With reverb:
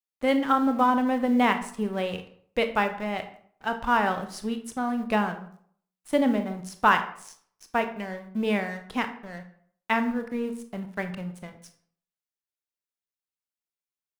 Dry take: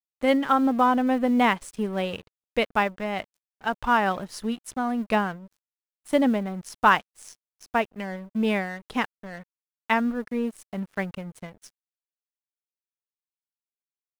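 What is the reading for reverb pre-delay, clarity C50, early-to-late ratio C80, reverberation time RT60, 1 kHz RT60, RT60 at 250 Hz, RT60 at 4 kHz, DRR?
23 ms, 11.0 dB, 14.5 dB, 0.60 s, 0.55 s, 0.55 s, 0.40 s, 7.5 dB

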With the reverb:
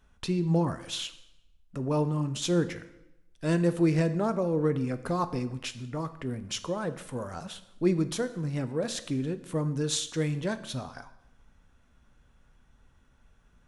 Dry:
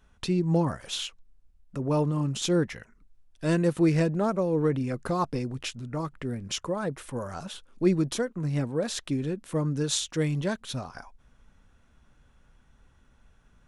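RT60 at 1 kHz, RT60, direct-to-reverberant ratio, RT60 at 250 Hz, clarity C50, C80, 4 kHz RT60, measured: 0.90 s, 0.90 s, 11.5 dB, 0.95 s, 14.5 dB, 16.0 dB, 0.75 s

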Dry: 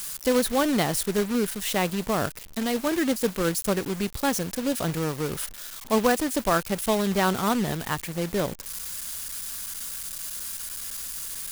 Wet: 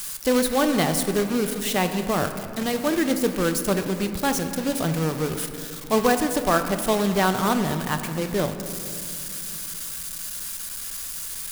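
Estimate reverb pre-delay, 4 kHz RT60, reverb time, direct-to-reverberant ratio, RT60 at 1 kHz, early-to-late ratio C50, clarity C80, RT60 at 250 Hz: 3 ms, 1.5 s, 2.9 s, 7.0 dB, 2.7 s, 8.5 dB, 9.5 dB, 4.1 s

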